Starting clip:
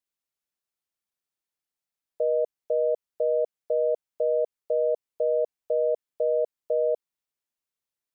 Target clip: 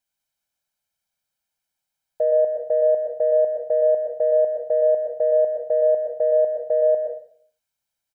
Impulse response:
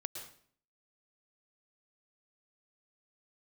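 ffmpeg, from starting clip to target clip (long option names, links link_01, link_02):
-filter_complex "[0:a]aecho=1:1:1.3:0.65,acontrast=84[link_01];[1:a]atrim=start_sample=2205[link_02];[link_01][link_02]afir=irnorm=-1:irlink=0"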